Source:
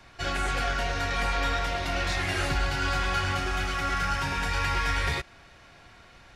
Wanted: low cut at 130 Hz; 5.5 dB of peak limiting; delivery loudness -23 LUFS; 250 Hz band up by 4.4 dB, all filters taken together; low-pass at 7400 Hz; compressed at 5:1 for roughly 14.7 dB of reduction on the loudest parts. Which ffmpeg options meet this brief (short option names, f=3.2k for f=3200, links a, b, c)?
-af "highpass=130,lowpass=7.4k,equalizer=f=250:t=o:g=6.5,acompressor=threshold=-42dB:ratio=5,volume=21dB,alimiter=limit=-14dB:level=0:latency=1"